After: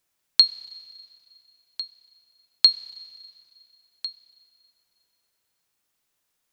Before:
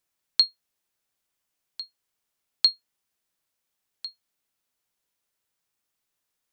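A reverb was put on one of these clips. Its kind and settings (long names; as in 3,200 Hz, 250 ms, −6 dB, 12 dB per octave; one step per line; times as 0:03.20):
four-comb reverb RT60 2.5 s, combs from 31 ms, DRR 17.5 dB
level +4.5 dB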